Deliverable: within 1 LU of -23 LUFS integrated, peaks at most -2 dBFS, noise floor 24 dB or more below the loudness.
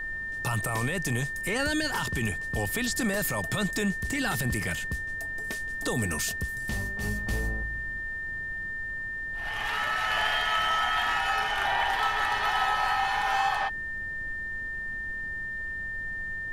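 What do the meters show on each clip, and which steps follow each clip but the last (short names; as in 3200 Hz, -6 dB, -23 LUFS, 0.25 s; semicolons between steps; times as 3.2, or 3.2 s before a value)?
steady tone 1800 Hz; tone level -32 dBFS; noise floor -35 dBFS; noise floor target -53 dBFS; loudness -28.5 LUFS; peak -13.5 dBFS; loudness target -23.0 LUFS
-> notch 1800 Hz, Q 30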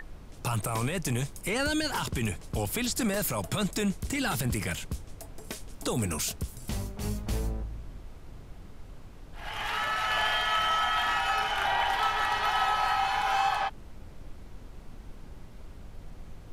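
steady tone none; noise floor -47 dBFS; noise floor target -53 dBFS
-> noise print and reduce 6 dB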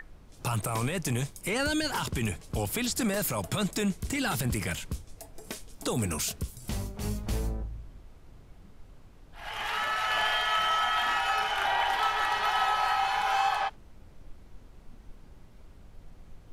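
noise floor -53 dBFS; loudness -29.0 LUFS; peak -14.0 dBFS; loudness target -23.0 LUFS
-> gain +6 dB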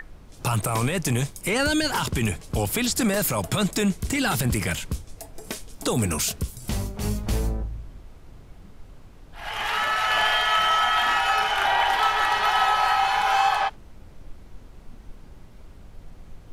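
loudness -23.0 LUFS; peak -8.0 dBFS; noise floor -47 dBFS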